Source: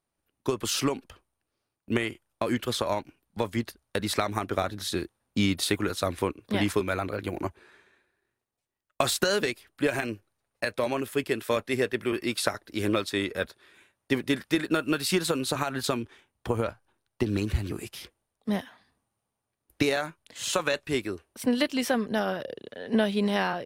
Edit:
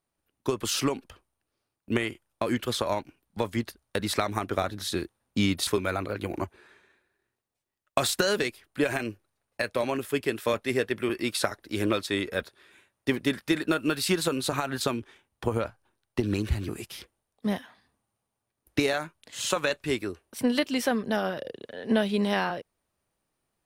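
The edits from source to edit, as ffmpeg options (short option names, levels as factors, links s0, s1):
-filter_complex "[0:a]asplit=2[s0][s1];[s0]atrim=end=5.672[s2];[s1]atrim=start=6.698[s3];[s2][s3]acrossfade=d=0.004:c1=hsin:c2=hsin"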